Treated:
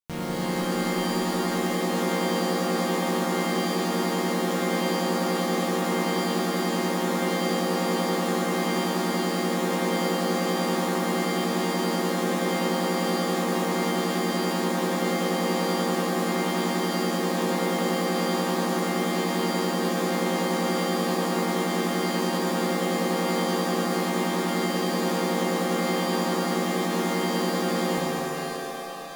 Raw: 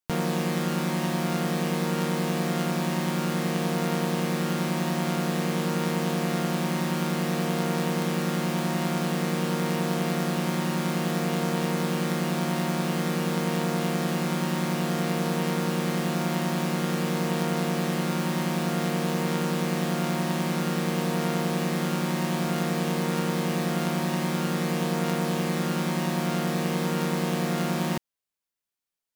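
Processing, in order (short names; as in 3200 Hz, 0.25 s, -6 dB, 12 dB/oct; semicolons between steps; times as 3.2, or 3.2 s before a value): shimmer reverb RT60 3.1 s, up +7 st, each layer -2 dB, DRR -3.5 dB; gain -7 dB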